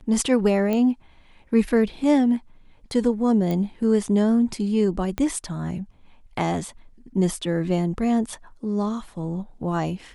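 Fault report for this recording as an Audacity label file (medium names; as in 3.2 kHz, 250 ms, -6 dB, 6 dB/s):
0.730000	0.730000	pop -13 dBFS
3.510000	3.510000	pop -15 dBFS
5.180000	5.180000	pop -12 dBFS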